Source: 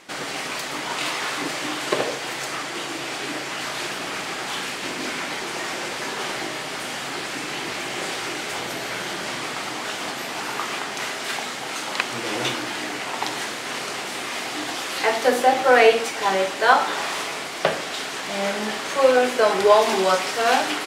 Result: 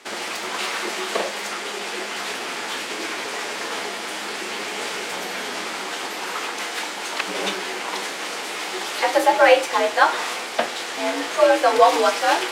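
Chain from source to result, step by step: time stretch by phase-locked vocoder 0.6×; frequency shift +69 Hz; gain +2 dB

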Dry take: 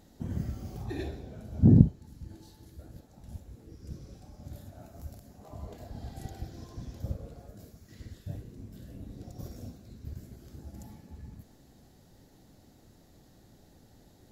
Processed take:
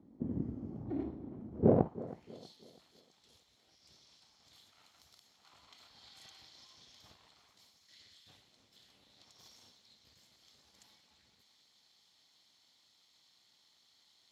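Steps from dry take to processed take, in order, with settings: minimum comb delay 0.92 ms; band-pass sweep 280 Hz -> 3800 Hz, 1.5–2.39; tape echo 0.323 s, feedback 42%, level -16 dB; gain +6.5 dB

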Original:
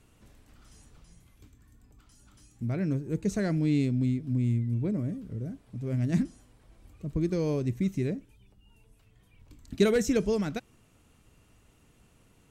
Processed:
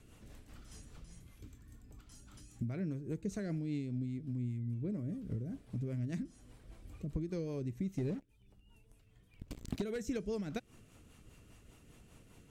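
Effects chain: 7.98–9.82 sample leveller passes 3; compressor 6:1, threshold -38 dBFS, peak gain reduction 21 dB; rotary speaker horn 5 Hz; gain +3.5 dB

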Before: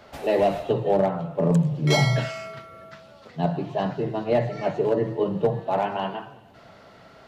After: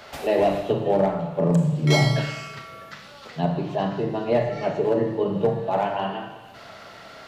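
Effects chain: Schroeder reverb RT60 0.73 s, combs from 27 ms, DRR 5.5 dB; mismatched tape noise reduction encoder only

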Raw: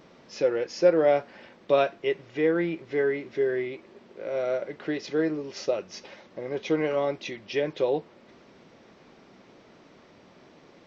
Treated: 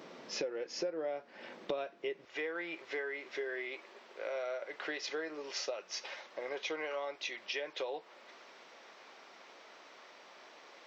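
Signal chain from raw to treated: HPF 250 Hz 12 dB/oct, from 2.25 s 760 Hz; compressor 8:1, threshold -39 dBFS, peak gain reduction 23.5 dB; gain +3.5 dB

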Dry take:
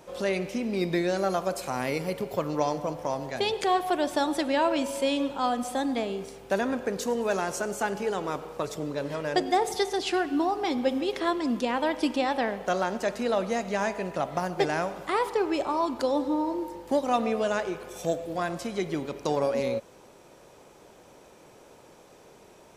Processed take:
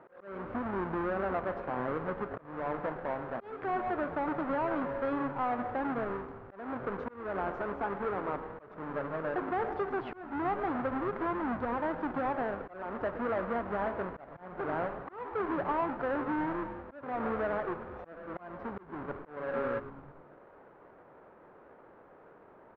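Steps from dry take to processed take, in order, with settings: half-waves squared off; HPF 250 Hz 6 dB/oct; limiter -16 dBFS, peak gain reduction 8 dB; ladder low-pass 1700 Hz, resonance 35%; on a send: frequency-shifting echo 0.109 s, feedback 63%, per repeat -140 Hz, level -14 dB; on the sum: auto swell 0.335 s

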